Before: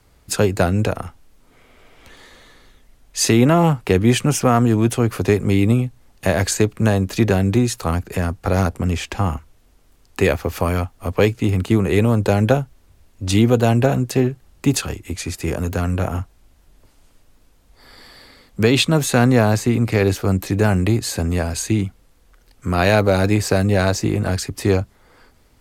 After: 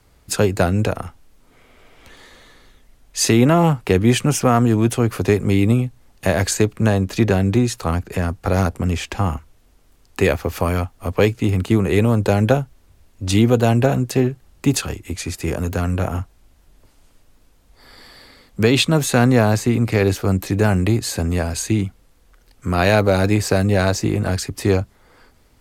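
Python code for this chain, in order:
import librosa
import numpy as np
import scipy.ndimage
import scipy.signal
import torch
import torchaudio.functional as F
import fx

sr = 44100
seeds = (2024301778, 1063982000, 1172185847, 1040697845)

y = fx.high_shelf(x, sr, hz=8800.0, db=-5.0, at=(6.77, 8.28))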